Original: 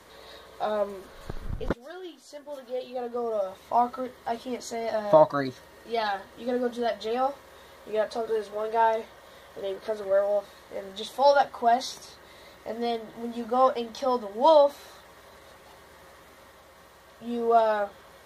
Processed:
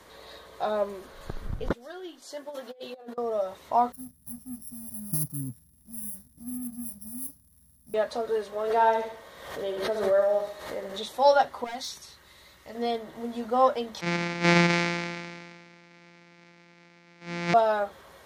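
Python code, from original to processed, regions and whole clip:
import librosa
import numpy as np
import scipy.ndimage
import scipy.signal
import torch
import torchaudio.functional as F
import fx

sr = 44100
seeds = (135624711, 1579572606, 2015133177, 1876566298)

y = fx.chain(x, sr, fx.highpass(hz=150.0, slope=12),
    fx.hum_notches(base_hz=50, count=8),
    fx.over_compress(threshold_db=-39.0, ratio=-0.5), at=(2.22, 3.18))
y = fx.chain(y, sr, fx.sample_sort(block=8),
    fx.cheby2_bandstop(low_hz=420.0, high_hz=6000.0, order=4, stop_db=40),
    fx.leveller(passes=1), at=(3.92, 7.94))
y = fx.chain(y, sr, fx.echo_feedback(ms=71, feedback_pct=41, wet_db=-7.5),
    fx.pre_swell(db_per_s=62.0), at=(8.63, 11.06))
y = fx.chain(y, sr, fx.peak_eq(hz=510.0, db=-10.5, octaves=2.7),
    fx.clip_hard(threshold_db=-29.5),
    fx.notch(hz=690.0, q=21.0), at=(11.64, 12.75))
y = fx.chain(y, sr, fx.sample_sort(block=256),
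    fx.cabinet(low_hz=190.0, low_slope=24, high_hz=5700.0, hz=(410.0, 630.0, 1100.0, 2200.0, 3100.0), db=(-9, -7, -6, 9, -4)),
    fx.sustainer(db_per_s=31.0), at=(14.01, 17.54))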